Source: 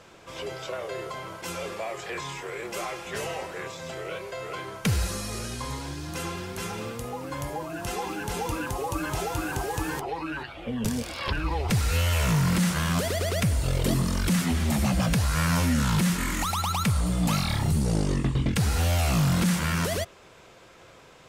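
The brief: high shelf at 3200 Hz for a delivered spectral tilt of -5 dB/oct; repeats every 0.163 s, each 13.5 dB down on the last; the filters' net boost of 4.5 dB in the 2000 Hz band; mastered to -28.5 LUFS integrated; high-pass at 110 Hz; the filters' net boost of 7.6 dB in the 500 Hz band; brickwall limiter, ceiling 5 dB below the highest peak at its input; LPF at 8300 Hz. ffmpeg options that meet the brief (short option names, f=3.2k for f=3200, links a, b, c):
-af "highpass=110,lowpass=8.3k,equalizer=f=500:t=o:g=9,equalizer=f=2k:t=o:g=8,highshelf=f=3.2k:g=-8.5,alimiter=limit=-15.5dB:level=0:latency=1,aecho=1:1:163|326:0.211|0.0444,volume=-1.5dB"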